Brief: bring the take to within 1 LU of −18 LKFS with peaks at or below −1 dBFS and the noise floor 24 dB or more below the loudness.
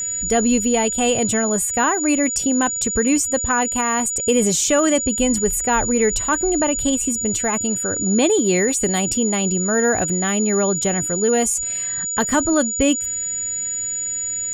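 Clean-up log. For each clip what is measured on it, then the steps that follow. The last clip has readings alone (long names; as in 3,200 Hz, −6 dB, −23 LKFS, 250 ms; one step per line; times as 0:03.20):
crackle rate 19 per second; interfering tone 6,900 Hz; level of the tone −22 dBFS; integrated loudness −18.0 LKFS; sample peak −5.0 dBFS; target loudness −18.0 LKFS
→ click removal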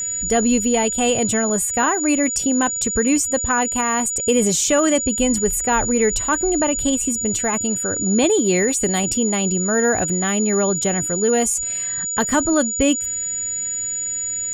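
crackle rate 0.34 per second; interfering tone 6,900 Hz; level of the tone −22 dBFS
→ notch filter 6,900 Hz, Q 30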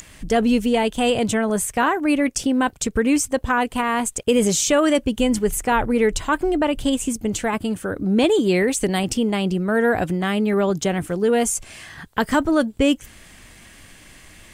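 interfering tone none found; integrated loudness −20.5 LKFS; sample peak −6.0 dBFS; target loudness −18.0 LKFS
→ level +2.5 dB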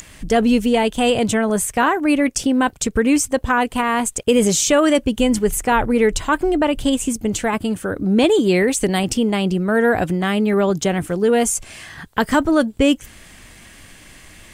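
integrated loudness −18.0 LKFS; sample peak −3.5 dBFS; background noise floor −44 dBFS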